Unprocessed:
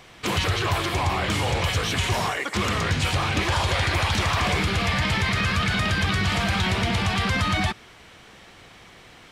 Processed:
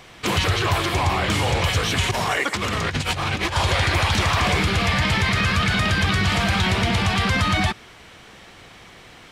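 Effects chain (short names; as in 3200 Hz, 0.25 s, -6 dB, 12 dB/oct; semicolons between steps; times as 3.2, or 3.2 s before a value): 2.11–3.56 negative-ratio compressor -26 dBFS, ratio -0.5; gain +3 dB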